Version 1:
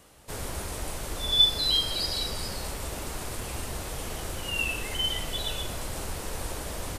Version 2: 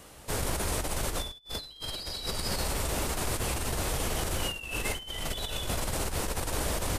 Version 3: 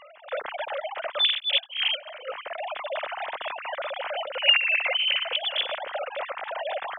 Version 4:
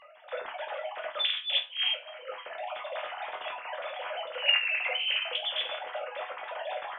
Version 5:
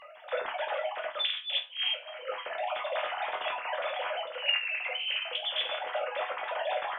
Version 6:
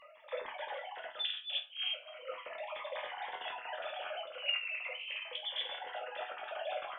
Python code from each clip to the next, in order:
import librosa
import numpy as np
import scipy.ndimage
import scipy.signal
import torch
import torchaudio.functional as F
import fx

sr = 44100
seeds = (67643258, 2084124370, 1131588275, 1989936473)

y1 = fx.over_compress(x, sr, threshold_db=-34.0, ratio=-0.5)
y1 = y1 * librosa.db_to_amplitude(2.0)
y2 = fx.sine_speech(y1, sr)
y2 = y2 * librosa.db_to_amplitude(3.0)
y3 = fx.resonator_bank(y2, sr, root=40, chord='major', decay_s=0.28)
y3 = y3 * librosa.db_to_amplitude(6.5)
y4 = fx.rider(y3, sr, range_db=4, speed_s=0.5)
y5 = fx.notch_cascade(y4, sr, direction='falling', hz=0.41)
y5 = y5 * librosa.db_to_amplitude(-5.5)